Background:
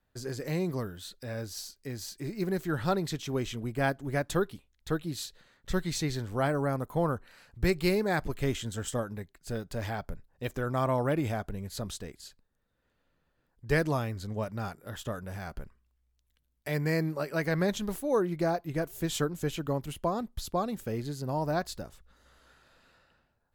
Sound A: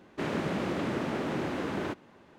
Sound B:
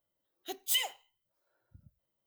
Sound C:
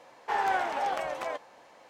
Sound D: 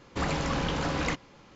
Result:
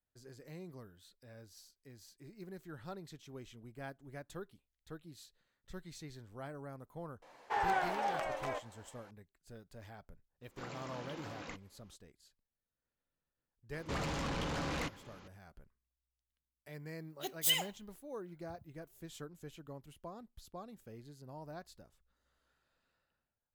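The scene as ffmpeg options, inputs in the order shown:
-filter_complex "[4:a]asplit=2[a][b];[0:a]volume=-18dB[c];[3:a]flanger=delay=6.1:depth=3.4:regen=-76:speed=1.3:shape=sinusoidal[d];[a]highpass=180[e];[b]asoftclip=type=tanh:threshold=-32dB[f];[d]atrim=end=1.89,asetpts=PTS-STARTPTS,volume=-1dB,afade=t=in:d=0.004:c=hsin,afade=t=out:st=1.886:d=0.004:c=hsin,adelay=318402S[g];[e]atrim=end=1.55,asetpts=PTS-STARTPTS,volume=-17dB,afade=t=in:d=0.004:c=hsin,afade=t=out:st=1.546:d=0.004:c=hsin,adelay=10410[h];[f]atrim=end=1.55,asetpts=PTS-STARTPTS,volume=-2.5dB,afade=t=in:d=0.004:c=hsin,afade=t=out:st=1.546:d=0.004:c=hsin,adelay=13730[i];[2:a]atrim=end=2.26,asetpts=PTS-STARTPTS,volume=-1dB,afade=t=in:d=0.004:c=hsin,afade=t=out:st=2.256:d=0.004:c=hsin,adelay=16750[j];[c][g][h][i][j]amix=inputs=5:normalize=0"

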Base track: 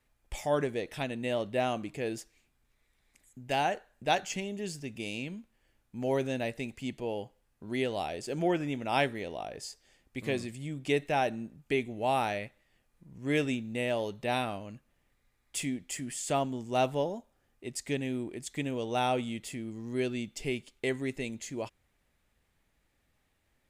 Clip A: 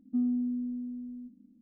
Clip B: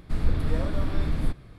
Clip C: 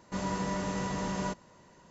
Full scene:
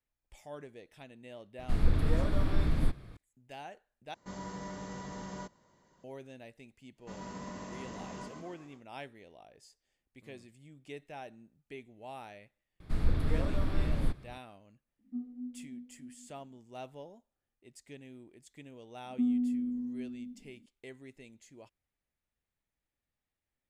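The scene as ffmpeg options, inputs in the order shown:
-filter_complex "[2:a]asplit=2[a][b];[3:a]asplit=2[c][d];[1:a]asplit=2[e][f];[0:a]volume=-17dB[g];[c]bandreject=f=2.6k:w=7.5[h];[d]asplit=8[i][j][k][l][m][n][o][p];[j]adelay=129,afreqshift=40,volume=-5.5dB[q];[k]adelay=258,afreqshift=80,volume=-10.5dB[r];[l]adelay=387,afreqshift=120,volume=-15.6dB[s];[m]adelay=516,afreqshift=160,volume=-20.6dB[t];[n]adelay=645,afreqshift=200,volume=-25.6dB[u];[o]adelay=774,afreqshift=240,volume=-30.7dB[v];[p]adelay=903,afreqshift=280,volume=-35.7dB[w];[i][q][r][s][t][u][v][w]amix=inputs=8:normalize=0[x];[e]flanger=delay=17.5:depth=5.1:speed=1.6[y];[g]asplit=2[z][aa];[z]atrim=end=4.144[ab];[h]atrim=end=1.9,asetpts=PTS-STARTPTS,volume=-9.5dB[ac];[aa]atrim=start=6.036[ad];[a]atrim=end=1.58,asetpts=PTS-STARTPTS,volume=-2.5dB,afade=t=in:d=0.004:c=hsin,afade=t=out:st=1.576:d=0.004:c=hsin,adelay=1590[ae];[x]atrim=end=1.9,asetpts=PTS-STARTPTS,volume=-12dB,afade=t=in:d=0.1,afade=t=out:st=1.8:d=0.1,adelay=6950[af];[b]atrim=end=1.58,asetpts=PTS-STARTPTS,volume=-4.5dB,afade=t=in:d=0.004:c=hsin,afade=t=out:st=1.576:d=0.004:c=hsin,adelay=12800[ag];[y]atrim=end=1.61,asetpts=PTS-STARTPTS,volume=-7.5dB,afade=t=in:d=0.004:c=hsin,afade=t=out:st=1.606:d=0.004:c=hsin,adelay=14990[ah];[f]atrim=end=1.61,asetpts=PTS-STARTPTS,volume=-0.5dB,afade=t=in:d=0.004:c=hsin,afade=t=out:st=1.606:d=0.004:c=hsin,adelay=19050[ai];[ab][ac]acrossfade=d=0.004:c1=hsin:c2=hsin[aj];[aj][ad]acrossfade=d=0.004:c1=hsin:c2=hsin[ak];[ak][ae][af][ag][ah][ai]amix=inputs=6:normalize=0"

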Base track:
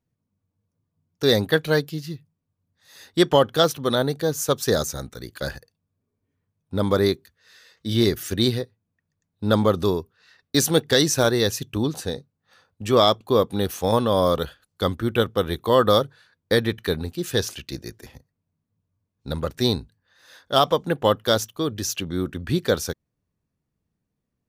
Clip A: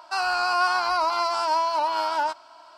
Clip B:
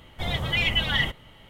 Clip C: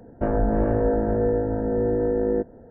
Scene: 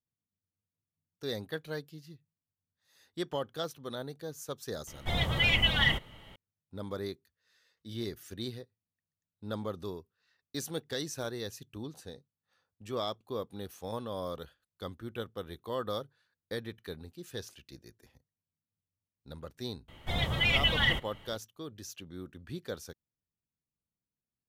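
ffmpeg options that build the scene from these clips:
-filter_complex "[2:a]asplit=2[a][b];[0:a]volume=-18dB[c];[a]atrim=end=1.49,asetpts=PTS-STARTPTS,volume=-2dB,afade=t=in:d=0.004:c=hsin,afade=t=out:st=1.486:d=0.004:c=hsin,adelay=4870[d];[b]atrim=end=1.49,asetpts=PTS-STARTPTS,volume=-3dB,afade=t=in:d=0.004:c=hsin,afade=t=out:st=1.486:d=0.004:c=hsin,adelay=876708S[e];[c][d][e]amix=inputs=3:normalize=0"

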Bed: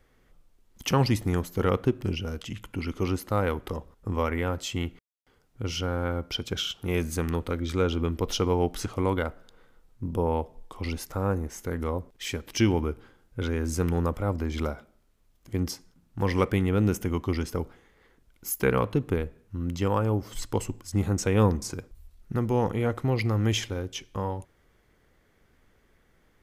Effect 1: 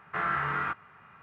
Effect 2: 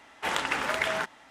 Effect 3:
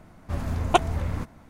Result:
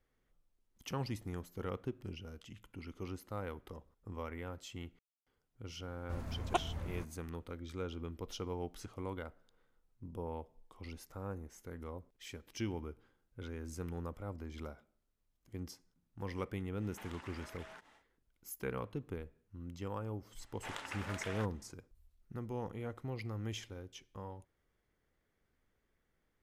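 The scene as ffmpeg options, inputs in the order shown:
-filter_complex "[2:a]asplit=2[a][b];[0:a]volume=-16dB[c];[a]acompressor=threshold=-39dB:ratio=6:attack=3.2:release=140:knee=1:detection=peak[d];[3:a]atrim=end=1.49,asetpts=PTS-STARTPTS,volume=-13.5dB,afade=t=in:d=0.004:c=hsin,afade=t=out:st=1.486:d=0.004:c=hsin,adelay=5800[e];[d]atrim=end=1.3,asetpts=PTS-STARTPTS,volume=-11dB,afade=t=in:d=0.1,afade=t=out:st=1.2:d=0.1,adelay=16750[f];[b]atrim=end=1.3,asetpts=PTS-STARTPTS,volume=-16dB,afade=t=in:d=0.004:c=hsin,afade=t=out:st=1.296:d=0.004:c=hsin,adelay=20400[g];[c][e][f][g]amix=inputs=4:normalize=0"

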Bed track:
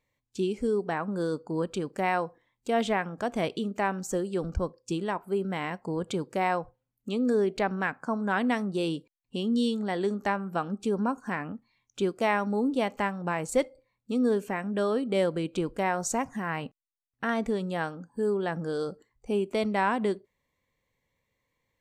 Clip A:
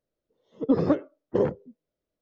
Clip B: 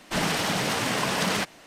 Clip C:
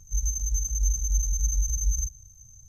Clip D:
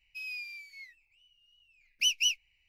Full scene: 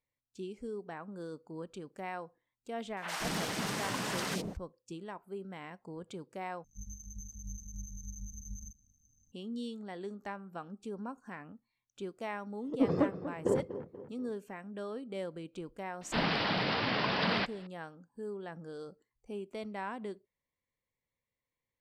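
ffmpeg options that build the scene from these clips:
-filter_complex "[2:a]asplit=2[a][b];[0:a]volume=-13.5dB[c];[a]acrossover=split=630|2800[d][e][f];[f]adelay=60[g];[d]adelay=180[h];[h][e][g]amix=inputs=3:normalize=0[i];[3:a]tremolo=f=150:d=0.75[j];[1:a]asplit=2[k][l];[l]adelay=241,lowpass=f=2.9k:p=1,volume=-12dB,asplit=2[m][n];[n]adelay=241,lowpass=f=2.9k:p=1,volume=0.45,asplit=2[o][p];[p]adelay=241,lowpass=f=2.9k:p=1,volume=0.45,asplit=2[q][r];[r]adelay=241,lowpass=f=2.9k:p=1,volume=0.45,asplit=2[s][t];[t]adelay=241,lowpass=f=2.9k:p=1,volume=0.45[u];[k][m][o][q][s][u]amix=inputs=6:normalize=0[v];[b]aresample=11025,aresample=44100[w];[c]asplit=2[x][y];[x]atrim=end=6.644[z];[j]atrim=end=2.68,asetpts=PTS-STARTPTS,volume=-16dB[aa];[y]atrim=start=9.316[ab];[i]atrim=end=1.66,asetpts=PTS-STARTPTS,volume=-8.5dB,afade=t=in:d=0.004:c=hsin,afade=t=out:st=1.656:d=0.004:c=hsin,adelay=2910[ac];[v]atrim=end=2.21,asetpts=PTS-STARTPTS,volume=-6.5dB,afade=t=in:d=0.004:c=hsin,afade=t=out:st=2.206:d=0.004:c=hsin,adelay=12110[ad];[w]atrim=end=1.66,asetpts=PTS-STARTPTS,volume=-5dB,afade=t=in:d=0.004:c=hsin,afade=t=out:st=1.656:d=0.004:c=hsin,adelay=16010[ae];[z][aa]acrossfade=d=0.004:c1=hsin:c2=hsin[af];[af][ab]acrossfade=d=0.004:c1=hsin:c2=hsin[ag];[ag][ac][ad][ae]amix=inputs=4:normalize=0"

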